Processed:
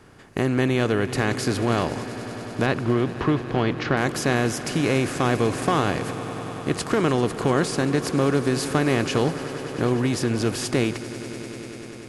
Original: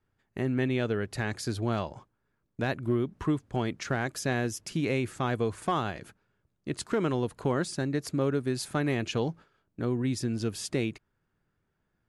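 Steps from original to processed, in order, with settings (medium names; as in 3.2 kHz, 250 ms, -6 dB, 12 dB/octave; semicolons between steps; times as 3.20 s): spectral levelling over time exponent 0.6; 2.66–3.97 s: low-pass 4.5 kHz 24 dB/octave; echo with a slow build-up 98 ms, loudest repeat 5, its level -18 dB; trim +4 dB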